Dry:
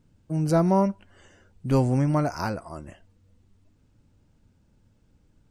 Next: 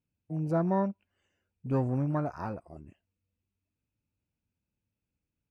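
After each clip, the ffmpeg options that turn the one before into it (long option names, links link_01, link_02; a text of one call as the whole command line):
ffmpeg -i in.wav -af "highpass=43,afwtdn=0.0251,equalizer=frequency=2500:width=4:gain=13,volume=-7dB" out.wav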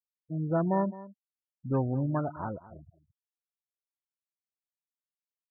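ffmpeg -i in.wav -af "highshelf=frequency=2300:gain=8,afftfilt=real='re*gte(hypot(re,im),0.0224)':imag='im*gte(hypot(re,im),0.0224)':win_size=1024:overlap=0.75,aecho=1:1:213:0.133" out.wav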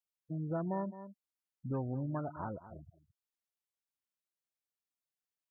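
ffmpeg -i in.wav -af "acompressor=threshold=-37dB:ratio=2,volume=-1.5dB" out.wav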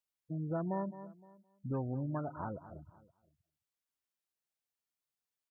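ffmpeg -i in.wav -af "aecho=1:1:517:0.0631" out.wav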